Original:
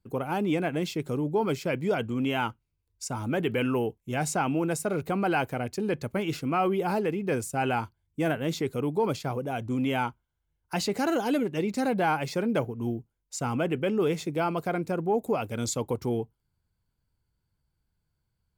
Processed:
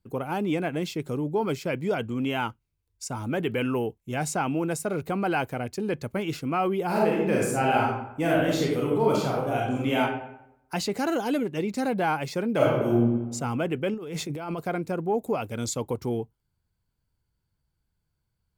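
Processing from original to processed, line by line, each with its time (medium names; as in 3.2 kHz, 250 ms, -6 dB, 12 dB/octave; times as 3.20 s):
6.86–10.00 s: reverb throw, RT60 0.82 s, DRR -3.5 dB
12.56–12.97 s: reverb throw, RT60 1.2 s, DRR -8 dB
13.94–14.59 s: compressor with a negative ratio -33 dBFS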